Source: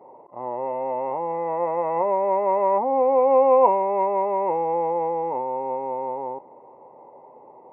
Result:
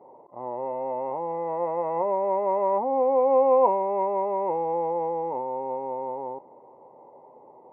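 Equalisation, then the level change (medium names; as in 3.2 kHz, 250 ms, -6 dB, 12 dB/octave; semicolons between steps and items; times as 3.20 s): treble shelf 2 kHz -11 dB; -2.0 dB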